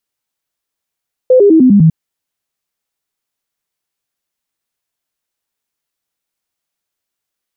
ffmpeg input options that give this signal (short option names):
-f lavfi -i "aevalsrc='0.708*clip(min(mod(t,0.1),0.1-mod(t,0.1))/0.005,0,1)*sin(2*PI*510*pow(2,-floor(t/0.1)/3)*mod(t,0.1))':d=0.6:s=44100"